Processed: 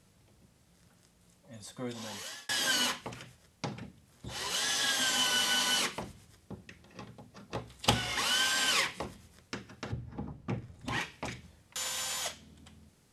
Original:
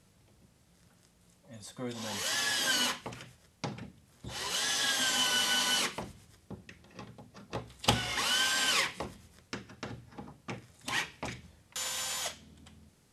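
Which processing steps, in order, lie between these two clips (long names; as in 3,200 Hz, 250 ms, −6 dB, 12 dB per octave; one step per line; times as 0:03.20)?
0:01.86–0:02.49: fade out
0:09.92–0:11.01: spectral tilt −3 dB per octave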